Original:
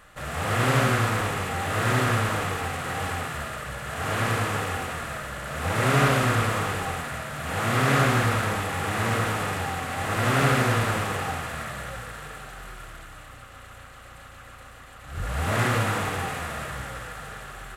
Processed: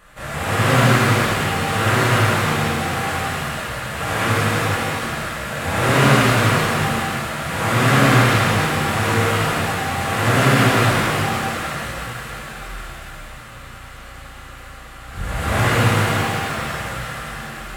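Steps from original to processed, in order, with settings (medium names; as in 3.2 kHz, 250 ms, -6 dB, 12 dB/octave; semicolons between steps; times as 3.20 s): 16.17–16.65 s: median filter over 3 samples; pitch-shifted reverb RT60 1.6 s, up +7 st, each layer -8 dB, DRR -5.5 dB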